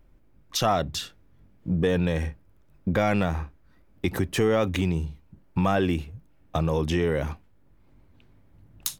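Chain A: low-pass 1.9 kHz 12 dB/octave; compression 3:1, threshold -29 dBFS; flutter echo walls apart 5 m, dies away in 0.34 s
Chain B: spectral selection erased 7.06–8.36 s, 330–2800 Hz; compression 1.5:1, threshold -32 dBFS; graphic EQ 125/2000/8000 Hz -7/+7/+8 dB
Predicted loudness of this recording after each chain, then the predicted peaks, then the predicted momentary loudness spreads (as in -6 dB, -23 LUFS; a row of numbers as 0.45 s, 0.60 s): -32.0 LUFS, -30.5 LUFS; -14.5 dBFS, -6.5 dBFS; 15 LU, 13 LU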